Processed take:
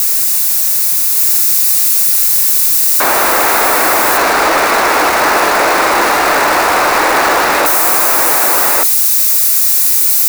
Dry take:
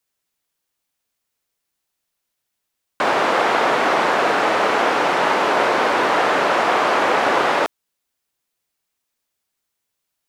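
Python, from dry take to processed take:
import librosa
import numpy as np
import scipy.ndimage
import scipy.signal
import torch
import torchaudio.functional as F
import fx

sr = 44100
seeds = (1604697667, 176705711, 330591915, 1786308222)

p1 = x + 0.5 * 10.0 ** (-15.0 / 20.0) * np.diff(np.sign(x), prepend=np.sign(x[:1]))
p2 = fx.low_shelf(p1, sr, hz=470.0, db=-11.0)
p3 = fx.leveller(p2, sr, passes=3)
p4 = fx.graphic_eq_31(p3, sr, hz=(125, 315, 3150), db=(-9, 5, -9))
y = p4 + fx.echo_single(p4, sr, ms=1171, db=-3.5, dry=0)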